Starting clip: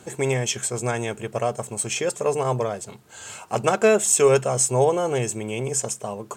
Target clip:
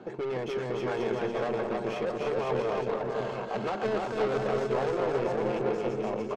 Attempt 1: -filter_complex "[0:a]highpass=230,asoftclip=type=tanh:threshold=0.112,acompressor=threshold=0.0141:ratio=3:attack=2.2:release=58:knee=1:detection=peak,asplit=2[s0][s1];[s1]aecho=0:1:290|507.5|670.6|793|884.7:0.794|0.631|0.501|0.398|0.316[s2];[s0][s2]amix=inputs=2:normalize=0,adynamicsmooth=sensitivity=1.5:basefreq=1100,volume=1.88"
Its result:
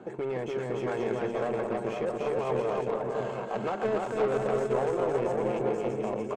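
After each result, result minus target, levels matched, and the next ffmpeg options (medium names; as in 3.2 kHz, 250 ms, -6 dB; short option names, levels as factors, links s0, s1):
4 kHz band -5.0 dB; saturation: distortion -5 dB
-filter_complex "[0:a]highpass=230,asoftclip=type=tanh:threshold=0.112,acompressor=threshold=0.0141:ratio=3:attack=2.2:release=58:knee=1:detection=peak,lowpass=f=4900:t=q:w=2.4,asplit=2[s0][s1];[s1]aecho=0:1:290|507.5|670.6|793|884.7:0.794|0.631|0.501|0.398|0.316[s2];[s0][s2]amix=inputs=2:normalize=0,adynamicsmooth=sensitivity=1.5:basefreq=1100,volume=1.88"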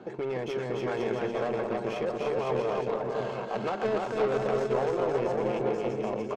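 saturation: distortion -5 dB
-filter_complex "[0:a]highpass=230,asoftclip=type=tanh:threshold=0.0501,acompressor=threshold=0.0141:ratio=3:attack=2.2:release=58:knee=1:detection=peak,lowpass=f=4900:t=q:w=2.4,asplit=2[s0][s1];[s1]aecho=0:1:290|507.5|670.6|793|884.7:0.794|0.631|0.501|0.398|0.316[s2];[s0][s2]amix=inputs=2:normalize=0,adynamicsmooth=sensitivity=1.5:basefreq=1100,volume=1.88"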